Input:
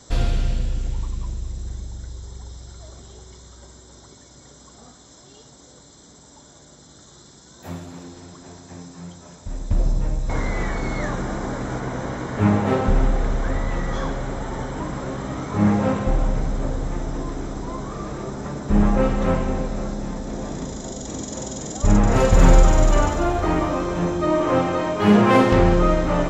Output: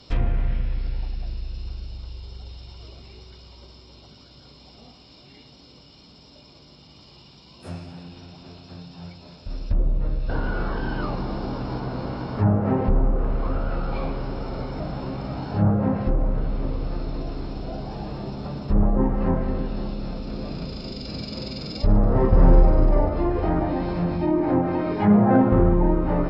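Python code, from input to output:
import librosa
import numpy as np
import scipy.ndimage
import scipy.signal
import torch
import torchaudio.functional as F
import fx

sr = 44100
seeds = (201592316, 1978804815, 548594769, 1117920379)

y = fx.formant_shift(x, sr, semitones=-6)
y = fx.env_lowpass_down(y, sr, base_hz=1200.0, full_db=-14.0)
y = F.gain(torch.from_numpy(y), -1.5).numpy()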